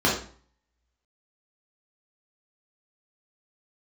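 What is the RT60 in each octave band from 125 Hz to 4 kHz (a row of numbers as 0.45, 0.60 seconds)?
0.60, 0.50, 0.45, 0.45, 0.40, 0.40 seconds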